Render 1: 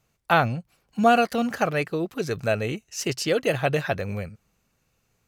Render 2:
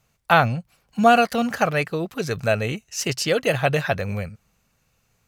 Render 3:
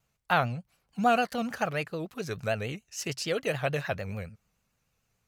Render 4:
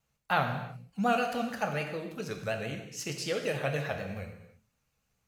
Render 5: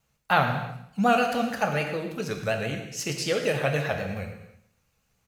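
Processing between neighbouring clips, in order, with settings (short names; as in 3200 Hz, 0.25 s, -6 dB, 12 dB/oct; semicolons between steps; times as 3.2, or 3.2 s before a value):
bell 340 Hz -5.5 dB 0.85 oct; gain +4 dB
vibrato 6.8 Hz 95 cents; gain -9 dB
non-linear reverb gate 0.35 s falling, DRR 3.5 dB; gain -3.5 dB
feedback echo 0.111 s, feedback 42%, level -16.5 dB; gain +6 dB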